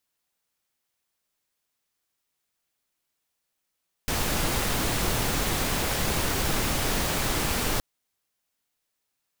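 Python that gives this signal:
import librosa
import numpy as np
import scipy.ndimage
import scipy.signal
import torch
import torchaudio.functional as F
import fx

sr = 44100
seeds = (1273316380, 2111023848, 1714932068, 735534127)

y = fx.noise_colour(sr, seeds[0], length_s=3.72, colour='pink', level_db=-26.0)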